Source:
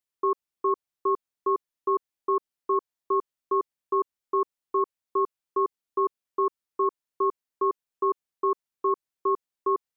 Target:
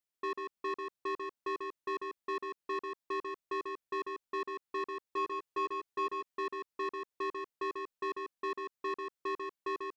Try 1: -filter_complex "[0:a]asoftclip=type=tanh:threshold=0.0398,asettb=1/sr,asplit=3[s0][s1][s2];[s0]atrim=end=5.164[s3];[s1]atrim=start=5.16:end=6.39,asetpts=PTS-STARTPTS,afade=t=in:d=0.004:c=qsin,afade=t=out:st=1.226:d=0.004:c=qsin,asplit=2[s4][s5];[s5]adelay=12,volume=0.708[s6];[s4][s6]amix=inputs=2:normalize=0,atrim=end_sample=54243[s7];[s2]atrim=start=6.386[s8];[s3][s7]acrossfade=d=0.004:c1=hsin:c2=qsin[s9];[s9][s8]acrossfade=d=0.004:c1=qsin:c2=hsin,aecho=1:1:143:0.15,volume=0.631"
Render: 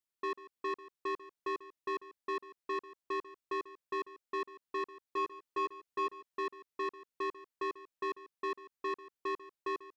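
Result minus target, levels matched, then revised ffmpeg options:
echo-to-direct -12 dB
-filter_complex "[0:a]asoftclip=type=tanh:threshold=0.0398,asettb=1/sr,asplit=3[s0][s1][s2];[s0]atrim=end=5.164[s3];[s1]atrim=start=5.16:end=6.39,asetpts=PTS-STARTPTS,afade=t=in:d=0.004:c=qsin,afade=t=out:st=1.226:d=0.004:c=qsin,asplit=2[s4][s5];[s5]adelay=12,volume=0.708[s6];[s4][s6]amix=inputs=2:normalize=0,atrim=end_sample=54243[s7];[s2]atrim=start=6.386[s8];[s3][s7]acrossfade=d=0.004:c1=hsin:c2=qsin[s9];[s9][s8]acrossfade=d=0.004:c1=qsin:c2=hsin,aecho=1:1:143:0.596,volume=0.631"

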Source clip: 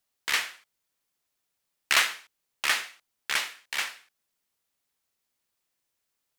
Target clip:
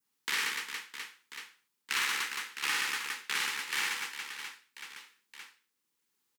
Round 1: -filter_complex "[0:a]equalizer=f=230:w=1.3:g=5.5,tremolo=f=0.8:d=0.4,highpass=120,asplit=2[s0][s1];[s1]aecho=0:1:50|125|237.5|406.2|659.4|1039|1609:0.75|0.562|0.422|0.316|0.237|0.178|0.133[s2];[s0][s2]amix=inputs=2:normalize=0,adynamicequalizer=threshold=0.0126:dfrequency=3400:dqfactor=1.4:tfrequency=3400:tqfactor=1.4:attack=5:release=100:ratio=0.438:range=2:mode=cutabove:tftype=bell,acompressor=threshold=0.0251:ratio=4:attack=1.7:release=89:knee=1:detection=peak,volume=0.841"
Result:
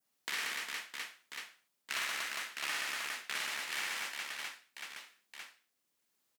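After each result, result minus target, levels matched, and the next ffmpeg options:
compression: peak gain reduction +6 dB; 500 Hz band +5.0 dB
-filter_complex "[0:a]equalizer=f=230:w=1.3:g=5.5,tremolo=f=0.8:d=0.4,highpass=120,asplit=2[s0][s1];[s1]aecho=0:1:50|125|237.5|406.2|659.4|1039|1609:0.75|0.562|0.422|0.316|0.237|0.178|0.133[s2];[s0][s2]amix=inputs=2:normalize=0,adynamicequalizer=threshold=0.0126:dfrequency=3400:dqfactor=1.4:tfrequency=3400:tqfactor=1.4:attack=5:release=100:ratio=0.438:range=2:mode=cutabove:tftype=bell,acompressor=threshold=0.0596:ratio=4:attack=1.7:release=89:knee=1:detection=peak,volume=0.841"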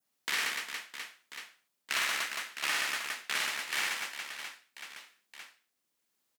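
500 Hz band +4.5 dB
-filter_complex "[0:a]equalizer=f=230:w=1.3:g=5.5,tremolo=f=0.8:d=0.4,highpass=120,asplit=2[s0][s1];[s1]aecho=0:1:50|125|237.5|406.2|659.4|1039|1609:0.75|0.562|0.422|0.316|0.237|0.178|0.133[s2];[s0][s2]amix=inputs=2:normalize=0,adynamicequalizer=threshold=0.0126:dfrequency=3400:dqfactor=1.4:tfrequency=3400:tqfactor=1.4:attack=5:release=100:ratio=0.438:range=2:mode=cutabove:tftype=bell,asuperstop=centerf=640:order=12:qfactor=2.6,acompressor=threshold=0.0596:ratio=4:attack=1.7:release=89:knee=1:detection=peak,volume=0.841"

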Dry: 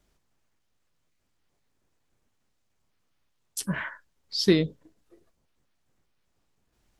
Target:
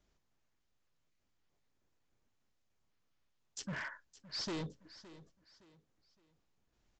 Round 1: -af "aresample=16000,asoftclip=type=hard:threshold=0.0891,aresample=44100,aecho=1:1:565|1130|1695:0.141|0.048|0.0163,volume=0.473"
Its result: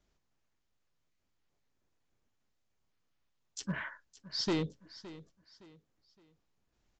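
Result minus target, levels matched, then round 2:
hard clipper: distortion -5 dB
-af "aresample=16000,asoftclip=type=hard:threshold=0.0282,aresample=44100,aecho=1:1:565|1130|1695:0.141|0.048|0.0163,volume=0.473"

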